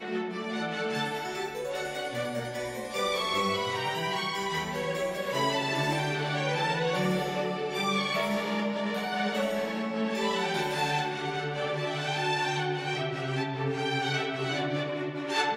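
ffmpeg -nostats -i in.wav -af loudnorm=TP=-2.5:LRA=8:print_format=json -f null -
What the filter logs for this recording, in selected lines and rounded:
"input_i" : "-29.9",
"input_tp" : "-15.3",
"input_lra" : "1.4",
"input_thresh" : "-39.9",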